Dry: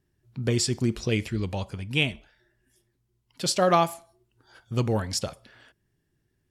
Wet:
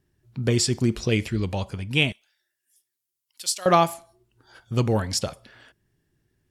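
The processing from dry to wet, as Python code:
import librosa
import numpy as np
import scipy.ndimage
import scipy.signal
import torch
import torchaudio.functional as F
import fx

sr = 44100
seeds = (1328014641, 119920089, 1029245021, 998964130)

y = fx.differentiator(x, sr, at=(2.12, 3.66))
y = y * librosa.db_to_amplitude(3.0)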